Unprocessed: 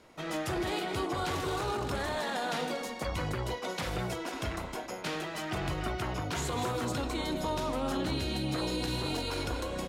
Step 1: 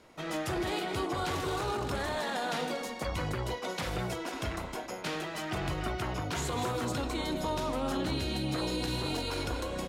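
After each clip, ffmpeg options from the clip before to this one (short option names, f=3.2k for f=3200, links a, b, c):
-af anull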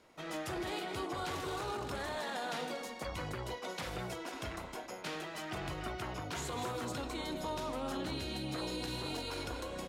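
-af "lowshelf=f=230:g=-4,volume=-5dB"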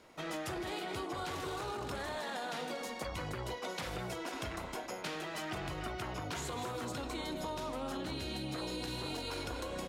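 -af "acompressor=threshold=-40dB:ratio=6,volume=4dB"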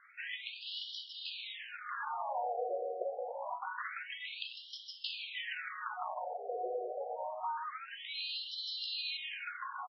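-af "aecho=1:1:130:0.2,afftfilt=real='re*between(b*sr/1024,520*pow(4100/520,0.5+0.5*sin(2*PI*0.26*pts/sr))/1.41,520*pow(4100/520,0.5+0.5*sin(2*PI*0.26*pts/sr))*1.41)':imag='im*between(b*sr/1024,520*pow(4100/520,0.5+0.5*sin(2*PI*0.26*pts/sr))/1.41,520*pow(4100/520,0.5+0.5*sin(2*PI*0.26*pts/sr))*1.41)':win_size=1024:overlap=0.75,volume=6.5dB"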